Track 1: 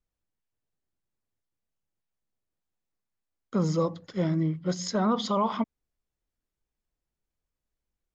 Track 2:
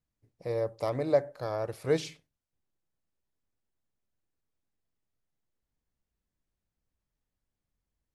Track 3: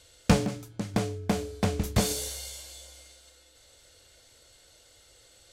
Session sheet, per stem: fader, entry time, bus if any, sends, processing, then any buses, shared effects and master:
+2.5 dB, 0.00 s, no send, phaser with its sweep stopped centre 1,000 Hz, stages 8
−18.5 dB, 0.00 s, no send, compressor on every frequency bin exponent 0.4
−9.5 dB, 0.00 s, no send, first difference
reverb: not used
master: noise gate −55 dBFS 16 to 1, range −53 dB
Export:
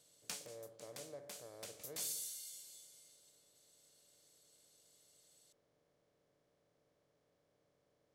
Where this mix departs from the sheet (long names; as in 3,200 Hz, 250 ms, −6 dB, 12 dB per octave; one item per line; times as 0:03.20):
stem 1: muted
stem 2 −18.5 dB → −29.5 dB
master: missing noise gate −55 dBFS 16 to 1, range −53 dB